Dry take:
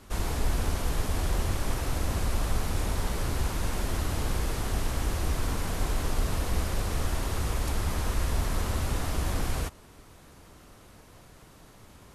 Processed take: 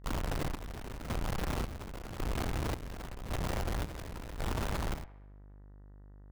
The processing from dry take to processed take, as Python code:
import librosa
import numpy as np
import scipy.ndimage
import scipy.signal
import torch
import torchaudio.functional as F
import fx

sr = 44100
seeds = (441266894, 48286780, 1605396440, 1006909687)

y = fx.schmitt(x, sr, flips_db=-35.0)
y = fx.stretch_grains(y, sr, factor=0.52, grain_ms=70.0)
y = fx.echo_wet_bandpass(y, sr, ms=66, feedback_pct=59, hz=1200.0, wet_db=-11.0)
y = fx.chopper(y, sr, hz=0.91, depth_pct=65, duty_pct=50)
y = fx.dmg_buzz(y, sr, base_hz=50.0, harmonics=39, level_db=-49.0, tilt_db=-8, odd_only=False)
y = F.gain(torch.from_numpy(y), -3.5).numpy()